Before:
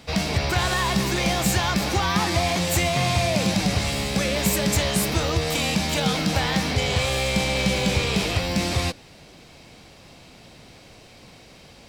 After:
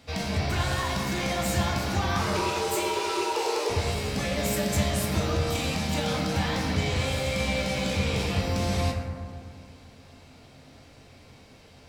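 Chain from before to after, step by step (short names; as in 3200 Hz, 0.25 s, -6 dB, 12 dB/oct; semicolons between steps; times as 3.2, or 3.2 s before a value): 2.21–3.7 frequency shift +270 Hz; reverb RT60 2.0 s, pre-delay 5 ms, DRR -1.5 dB; gain -8.5 dB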